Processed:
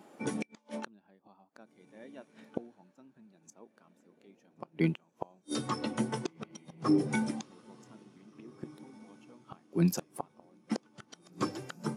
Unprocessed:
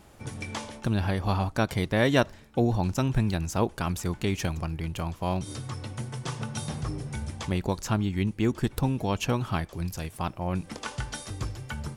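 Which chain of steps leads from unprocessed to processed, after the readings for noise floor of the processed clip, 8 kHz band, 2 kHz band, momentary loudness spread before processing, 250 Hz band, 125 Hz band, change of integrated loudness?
-70 dBFS, -7.5 dB, -10.5 dB, 10 LU, -5.0 dB, -12.0 dB, -5.5 dB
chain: HPF 200 Hz 24 dB/oct; flipped gate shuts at -26 dBFS, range -31 dB; diffused feedback echo 1.819 s, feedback 41%, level -14 dB; spectral expander 1.5:1; gain +4.5 dB

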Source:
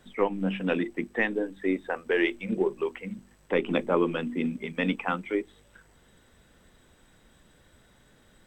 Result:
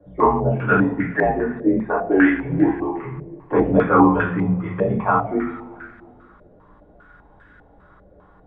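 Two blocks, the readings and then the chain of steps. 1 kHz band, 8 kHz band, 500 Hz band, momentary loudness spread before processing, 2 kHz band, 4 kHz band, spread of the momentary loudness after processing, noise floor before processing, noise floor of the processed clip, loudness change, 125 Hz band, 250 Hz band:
+15.0 dB, n/a, +7.5 dB, 7 LU, +7.0 dB, under -10 dB, 12 LU, -61 dBFS, -51 dBFS, +9.5 dB, +14.5 dB, +10.5 dB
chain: two-slope reverb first 0.51 s, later 2.3 s, from -18 dB, DRR -7.5 dB; frequency shift -62 Hz; stepped low-pass 5 Hz 580–1600 Hz; gain -1 dB

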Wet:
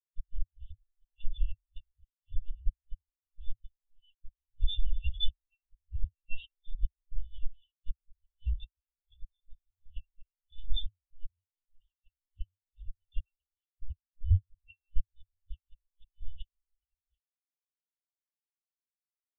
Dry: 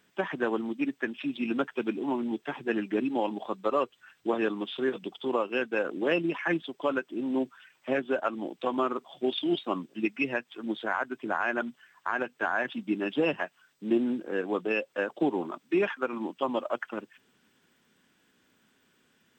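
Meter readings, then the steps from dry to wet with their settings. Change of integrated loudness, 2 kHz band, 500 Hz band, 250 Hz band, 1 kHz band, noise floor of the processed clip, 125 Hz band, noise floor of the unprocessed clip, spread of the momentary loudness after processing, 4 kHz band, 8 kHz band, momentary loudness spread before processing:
-9.0 dB, -27.5 dB, under -40 dB, under -40 dB, under -40 dB, under -85 dBFS, +8.0 dB, -69 dBFS, 21 LU, -3.0 dB, n/a, 6 LU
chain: minimum comb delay 1.1 ms; flutter echo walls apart 11.6 m, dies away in 0.39 s; dynamic EQ 590 Hz, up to -5 dB, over -46 dBFS, Q 1.2; in parallel at 0 dB: compressor 20:1, threshold -38 dBFS, peak gain reduction 14.5 dB; on the sum: bit-crush 8-bit; rotary speaker horn 0.9 Hz, later 6.3 Hz, at 8.96; flipped gate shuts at -24 dBFS, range -28 dB; FFT band-reject 100–2700 Hz; monotone LPC vocoder at 8 kHz 300 Hz; spectral expander 2.5:1; gain +16.5 dB

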